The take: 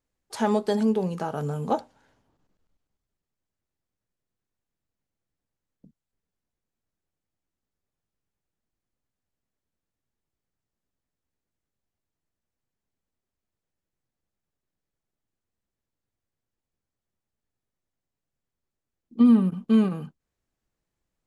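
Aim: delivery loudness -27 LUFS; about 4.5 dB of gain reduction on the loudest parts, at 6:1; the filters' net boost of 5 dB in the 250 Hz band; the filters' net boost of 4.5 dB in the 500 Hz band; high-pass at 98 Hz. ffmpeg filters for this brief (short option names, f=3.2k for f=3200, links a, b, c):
-af "highpass=98,equalizer=f=250:t=o:g=5,equalizer=f=500:t=o:g=4,acompressor=threshold=-12dB:ratio=6,volume=-5.5dB"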